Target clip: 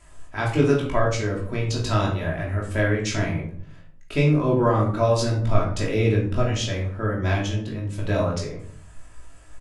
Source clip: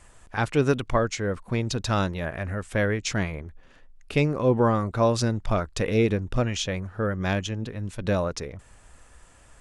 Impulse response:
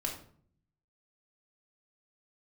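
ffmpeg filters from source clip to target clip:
-filter_complex "[0:a]asplit=2[s0][s1];[s1]adelay=19,volume=0.631[s2];[s0][s2]amix=inputs=2:normalize=0[s3];[1:a]atrim=start_sample=2205[s4];[s3][s4]afir=irnorm=-1:irlink=0,volume=0.794"

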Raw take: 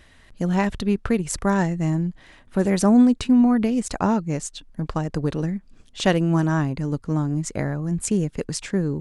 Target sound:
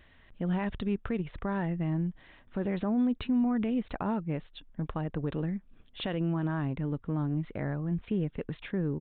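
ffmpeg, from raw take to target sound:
-af "alimiter=limit=0.178:level=0:latency=1:release=55,aresample=8000,aresample=44100,volume=0.473"

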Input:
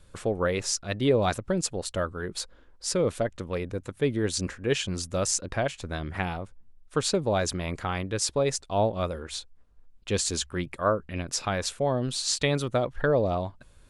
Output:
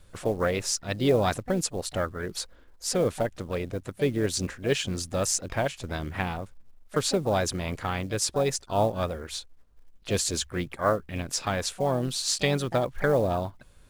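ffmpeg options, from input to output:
-filter_complex "[0:a]acrusher=bits=7:mode=log:mix=0:aa=0.000001,asplit=2[s0][s1];[s1]asetrate=58866,aresample=44100,atempo=0.749154,volume=0.224[s2];[s0][s2]amix=inputs=2:normalize=0"

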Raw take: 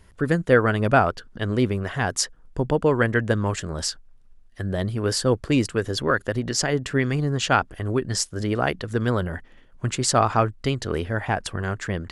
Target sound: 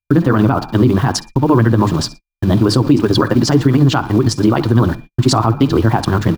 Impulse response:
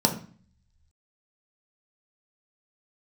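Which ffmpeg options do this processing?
-filter_complex "[0:a]bandreject=f=50:t=h:w=6,bandreject=f=100:t=h:w=6,bandreject=f=150:t=h:w=6,bandreject=f=200:t=h:w=6,bandreject=f=250:t=h:w=6,bandreject=f=300:t=h:w=6,acrossover=split=120|3000[s0][s1][s2];[s1]acrusher=bits=6:mix=0:aa=0.000001[s3];[s0][s3][s2]amix=inputs=3:normalize=0,asplit=4[s4][s5][s6][s7];[s5]adelay=115,afreqshift=34,volume=0.112[s8];[s6]adelay=230,afreqshift=68,volume=0.0403[s9];[s7]adelay=345,afreqshift=102,volume=0.0146[s10];[s4][s8][s9][s10]amix=inputs=4:normalize=0,flanger=delay=3:depth=7.2:regen=-49:speed=1.4:shape=triangular,aeval=exprs='val(0)+0.00141*sin(2*PI*2400*n/s)':c=same,equalizer=f=125:t=o:w=1:g=10,equalizer=f=250:t=o:w=1:g=4,equalizer=f=500:t=o:w=1:g=-5,equalizer=f=1000:t=o:w=1:g=11,equalizer=f=2000:t=o:w=1:g=-7,equalizer=f=4000:t=o:w=1:g=5,equalizer=f=8000:t=o:w=1:g=-7,acompressor=threshold=0.112:ratio=6,atempo=1.9,agate=range=0.00447:threshold=0.00794:ratio=16:detection=peak,equalizer=f=320:t=o:w=0.6:g=11,alimiter=level_in=4.47:limit=0.891:release=50:level=0:latency=1,volume=0.891"

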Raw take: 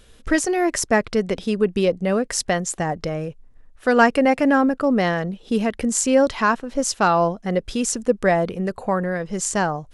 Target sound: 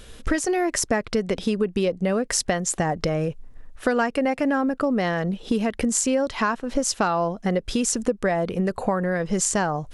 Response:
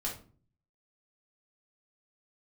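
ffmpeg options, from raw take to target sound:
-af "acompressor=threshold=0.0447:ratio=6,volume=2.24"

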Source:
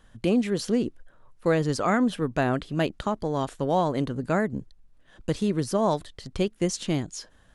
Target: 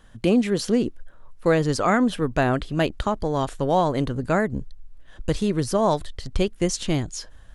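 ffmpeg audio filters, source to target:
-af "asubboost=boost=3.5:cutoff=91,volume=1.58"

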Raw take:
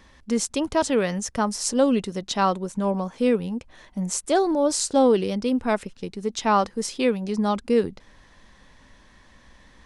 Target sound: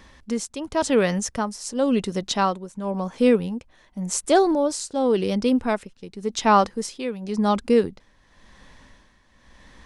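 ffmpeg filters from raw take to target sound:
-af "tremolo=f=0.92:d=0.71,volume=1.5"

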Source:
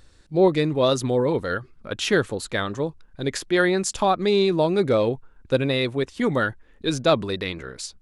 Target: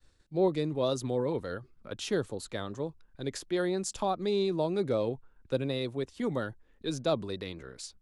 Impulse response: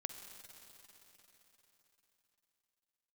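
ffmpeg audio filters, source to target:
-filter_complex "[0:a]agate=range=0.0224:threshold=0.00355:ratio=3:detection=peak,acrossover=split=210|1200|3100[s0][s1][s2][s3];[s2]acompressor=threshold=0.00708:ratio=6[s4];[s0][s1][s4][s3]amix=inputs=4:normalize=0,volume=0.355"

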